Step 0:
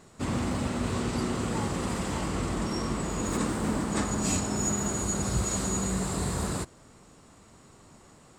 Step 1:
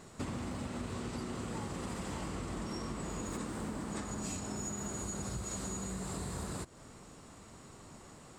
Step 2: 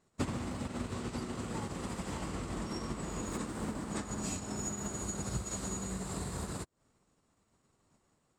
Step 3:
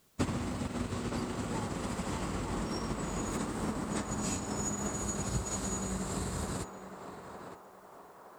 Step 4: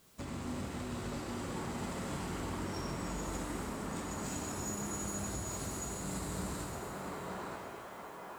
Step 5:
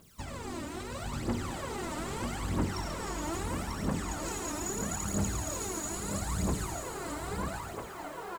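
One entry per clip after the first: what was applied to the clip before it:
compression 12:1, threshold -37 dBFS, peak gain reduction 15 dB; trim +1 dB
upward expansion 2.5:1, over -57 dBFS; trim +7 dB
word length cut 12-bit, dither triangular; on a send: band-passed feedback delay 914 ms, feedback 58%, band-pass 830 Hz, level -4 dB; on the sum: trim +2.5 dB
compression, threshold -38 dBFS, peak gain reduction 11.5 dB; saturation -40 dBFS, distortion -12 dB; pitch-shifted reverb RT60 2 s, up +7 st, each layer -8 dB, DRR -1 dB; trim +2 dB
phaser 0.77 Hz, delay 3.4 ms, feedback 75%; delay 942 ms -6 dB

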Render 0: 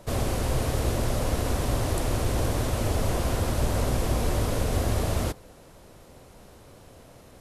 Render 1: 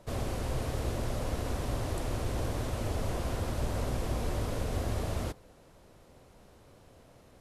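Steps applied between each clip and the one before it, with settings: treble shelf 7.3 kHz -5.5 dB; trim -7 dB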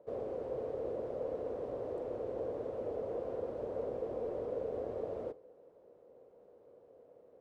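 band-pass filter 480 Hz, Q 4.7; on a send at -20.5 dB: reverberation RT60 0.30 s, pre-delay 31 ms; on the sum: trim +6 dB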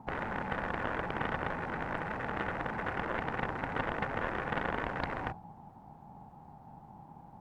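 ring modulator 330 Hz; Chebyshev shaper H 3 -18 dB, 7 -11 dB, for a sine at -26 dBFS; trim +8.5 dB

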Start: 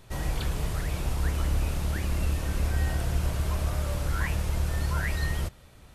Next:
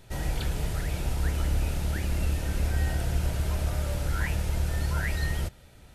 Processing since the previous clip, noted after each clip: band-stop 1.1 kHz, Q 5.5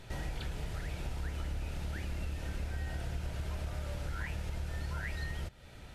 peaking EQ 2.5 kHz +3 dB 2.7 oct; compression 3:1, threshold -40 dBFS, peak gain reduction 14 dB; treble shelf 8.4 kHz -9.5 dB; trim +1.5 dB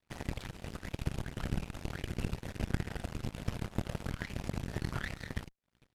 delay 1024 ms -22.5 dB; whisper effect; Chebyshev shaper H 3 -11 dB, 7 -33 dB, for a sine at -23.5 dBFS; trim +9 dB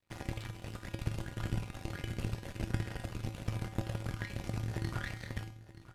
feedback comb 110 Hz, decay 0.48 s, harmonics odd, mix 80%; delay 927 ms -17 dB; trim +10 dB

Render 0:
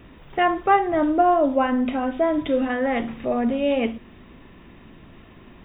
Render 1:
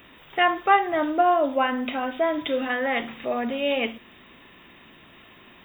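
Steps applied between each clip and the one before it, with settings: tilt EQ +3.5 dB/octave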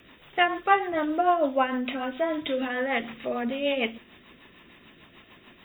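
rotary cabinet horn 6.7 Hz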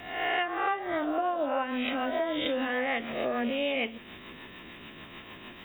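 reverse spectral sustain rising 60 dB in 0.72 s; compression 6:1, threshold -31 dBFS, peak gain reduction 16.5 dB; trim +4 dB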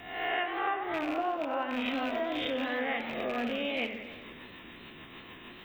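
rattle on loud lows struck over -39 dBFS, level -25 dBFS; band-stop 590 Hz, Q 12; modulated delay 91 ms, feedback 68%, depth 145 cents, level -10 dB; trim -3 dB

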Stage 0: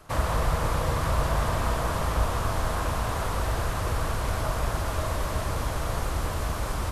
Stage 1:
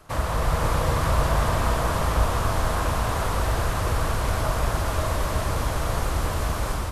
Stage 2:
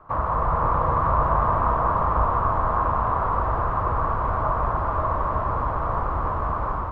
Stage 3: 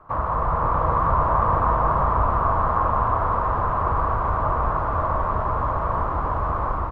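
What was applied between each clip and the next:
level rider gain up to 3.5 dB
resonant low-pass 1.1 kHz, resonance Q 3.7; trim -2.5 dB
delay 651 ms -5.5 dB

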